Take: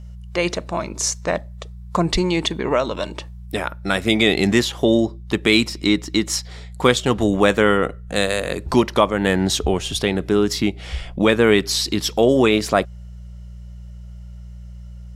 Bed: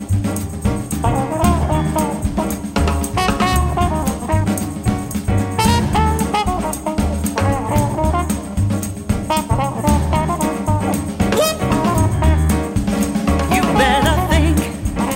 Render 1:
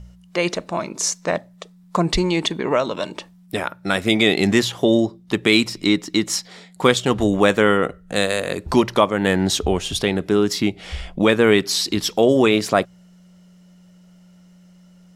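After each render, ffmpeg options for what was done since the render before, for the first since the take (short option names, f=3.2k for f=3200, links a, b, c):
-af "bandreject=f=60:t=h:w=4,bandreject=f=120:t=h:w=4"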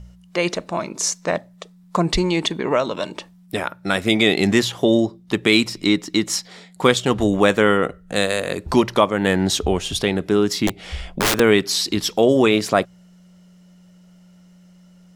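-filter_complex "[0:a]asettb=1/sr,asplit=3[a][b][c];[a]atrim=end=10.674[d];[b]atrim=start=10.67:end=11.4,asetpts=PTS-STARTPTS,afade=t=in:d=0.004:c=qsin,afade=t=out:st=0.726:d=0.004:c=qsin,aeval=exprs='(mod(4.47*val(0)+1,2)-1)/4.47':c=same[e];[c]atrim=start=11.396[f];[d][e]acrossfade=d=0.004:c1=hsin:c2=qsin[g];[g][f]acrossfade=d=0.004:c1=qsin:c2=hsin"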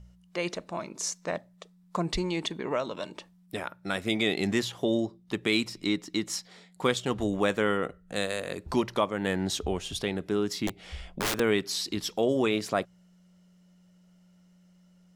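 -af "volume=-10.5dB"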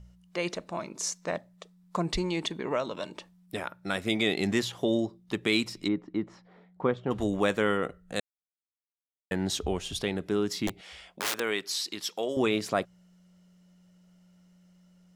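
-filter_complex "[0:a]asplit=3[a][b][c];[a]afade=t=out:st=5.87:d=0.02[d];[b]lowpass=1.2k,afade=t=in:st=5.87:d=0.02,afade=t=out:st=7.1:d=0.02[e];[c]afade=t=in:st=7.1:d=0.02[f];[d][e][f]amix=inputs=3:normalize=0,asettb=1/sr,asplit=3[g][h][i];[g]atrim=end=10.814[j];[h]atrim=start=10.81:end=12.37,asetpts=PTS-STARTPTS,afade=t=in:d=0.004:c=qsin,afade=t=out:st=1.556:d=0.004:c=qsin,highpass=f=760:p=1[k];[i]atrim=start=12.366[l];[j][k]acrossfade=d=0.004:c1=hsin:c2=qsin[m];[m][l]acrossfade=d=0.004:c1=qsin:c2=hsin,asplit=3[n][o][p];[n]atrim=end=8.2,asetpts=PTS-STARTPTS,afade=t=out:st=8.196:d=0.004:c=hsin[q];[o]atrim=start=8.2:end=9.31,asetpts=PTS-STARTPTS,volume=0[r];[p]atrim=start=9.31,asetpts=PTS-STARTPTS,afade=t=in:d=0.004:c=hsin[s];[q][r][s]concat=n=3:v=0:a=1"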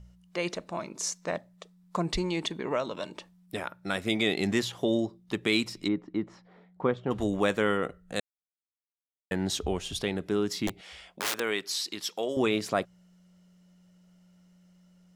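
-af anull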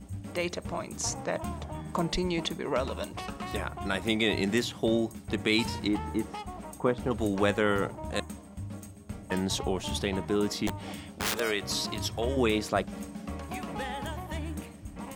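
-filter_complex "[1:a]volume=-22dB[a];[0:a][a]amix=inputs=2:normalize=0"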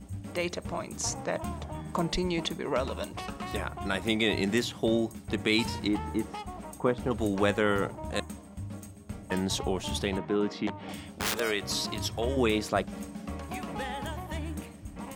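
-filter_complex "[0:a]asettb=1/sr,asplit=3[a][b][c];[a]atrim=end=10.184[d];[b]atrim=start=10.18:end=10.89,asetpts=PTS-STARTPTS,afade=t=in:d=0.004:c=qsin,afade=t=out:st=0.706:d=0.004:c=qsin,highpass=140,lowpass=3k[e];[c]atrim=start=10.886[f];[d][e]acrossfade=d=0.004:c1=hsin:c2=qsin[g];[g][f]acrossfade=d=0.004:c1=qsin:c2=hsin"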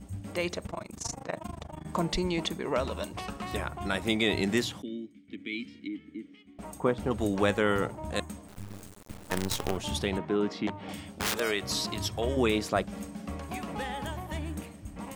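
-filter_complex "[0:a]asettb=1/sr,asplit=3[a][b][c];[a]atrim=end=0.664[d];[b]atrim=start=0.66:end=1.85,asetpts=PTS-STARTPTS,afade=t=in:d=0.004:c=qsin,afade=t=out:st=1.186:d=0.004:c=qsin,tremolo=f=25:d=0.947[e];[c]atrim=start=1.846[f];[d][e]acrossfade=d=0.004:c1=hsin:c2=qsin[g];[g][f]acrossfade=d=0.004:c1=qsin:c2=hsin,asettb=1/sr,asplit=3[h][i][j];[h]atrim=end=4.824[k];[i]atrim=start=4.82:end=6.59,asetpts=PTS-STARTPTS,afade=t=in:d=0.004:c=qsin,afade=t=out:st=1.766:d=0.004:c=qsin,asplit=3[l][m][n];[l]bandpass=f=270:t=q:w=8,volume=0dB[o];[m]bandpass=f=2.29k:t=q:w=8,volume=-6dB[p];[n]bandpass=f=3.01k:t=q:w=8,volume=-9dB[q];[o][p][q]amix=inputs=3:normalize=0[r];[j]atrim=start=6.586[s];[k][r]acrossfade=d=0.004:c1=hsin:c2=qsin[t];[t][s]acrossfade=d=0.004:c1=qsin:c2=hsin,asettb=1/sr,asplit=3[u][v][w];[u]atrim=end=8.484[x];[v]atrim=start=8.48:end=9.77,asetpts=PTS-STARTPTS,afade=t=in:d=0.004:c=qsin,afade=t=out:st=1.286:d=0.004:c=qsin,acrusher=bits=5:dc=4:mix=0:aa=0.000001[y];[w]atrim=start=9.766[z];[x][y]acrossfade=d=0.004:c1=hsin:c2=qsin[aa];[aa][z]acrossfade=d=0.004:c1=qsin:c2=hsin"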